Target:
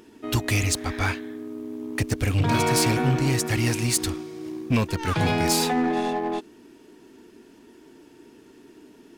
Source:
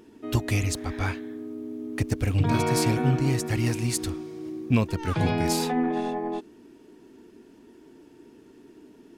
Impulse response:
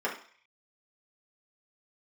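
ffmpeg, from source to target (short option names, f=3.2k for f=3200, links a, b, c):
-filter_complex "[0:a]tiltshelf=f=830:g=-3,asplit=2[a][b];[b]acrusher=bits=4:mix=0:aa=0.5,volume=-11dB[c];[a][c]amix=inputs=2:normalize=0,asoftclip=type=tanh:threshold=-17dB,volume=3dB"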